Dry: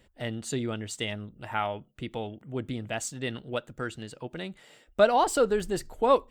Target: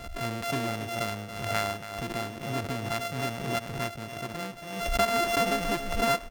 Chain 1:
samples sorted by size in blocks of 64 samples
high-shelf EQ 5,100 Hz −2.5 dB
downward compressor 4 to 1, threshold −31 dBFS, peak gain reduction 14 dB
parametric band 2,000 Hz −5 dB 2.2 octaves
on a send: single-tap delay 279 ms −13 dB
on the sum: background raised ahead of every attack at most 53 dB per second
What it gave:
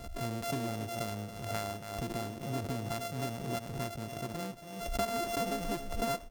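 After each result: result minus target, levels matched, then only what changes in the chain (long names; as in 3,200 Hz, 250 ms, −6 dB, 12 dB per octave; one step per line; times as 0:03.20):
downward compressor: peak gain reduction +5 dB; 2,000 Hz band −5.0 dB
change: downward compressor 4 to 1, threshold −24.5 dBFS, peak gain reduction 9 dB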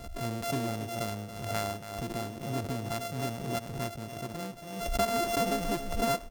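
2,000 Hz band −4.5 dB
change: parametric band 2,000 Hz +3 dB 2.2 octaves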